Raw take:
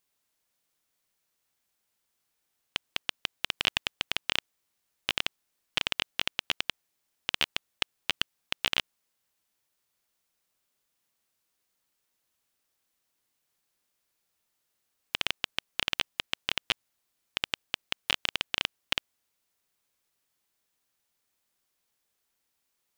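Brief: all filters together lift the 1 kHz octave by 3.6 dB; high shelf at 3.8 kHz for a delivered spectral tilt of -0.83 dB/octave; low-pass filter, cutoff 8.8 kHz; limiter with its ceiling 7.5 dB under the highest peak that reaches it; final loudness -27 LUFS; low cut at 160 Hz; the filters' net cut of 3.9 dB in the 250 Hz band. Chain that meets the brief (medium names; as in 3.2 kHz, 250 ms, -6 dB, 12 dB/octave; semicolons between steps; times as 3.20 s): high-pass 160 Hz; low-pass 8.8 kHz; peaking EQ 250 Hz -4.5 dB; peaking EQ 1 kHz +5.5 dB; treble shelf 3.8 kHz -8.5 dB; trim +13.5 dB; peak limiter -2 dBFS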